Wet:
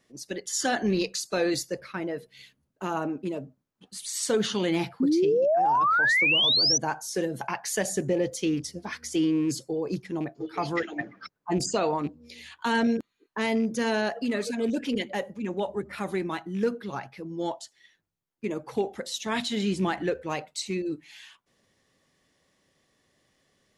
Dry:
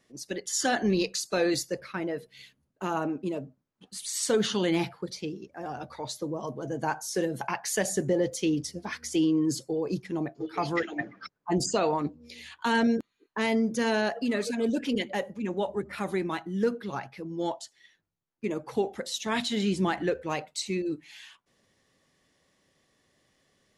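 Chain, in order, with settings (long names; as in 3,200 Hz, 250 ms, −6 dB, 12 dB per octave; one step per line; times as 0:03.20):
loose part that buzzes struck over −30 dBFS, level −38 dBFS
sound drawn into the spectrogram rise, 0:05.00–0:06.78, 250–6,100 Hz −22 dBFS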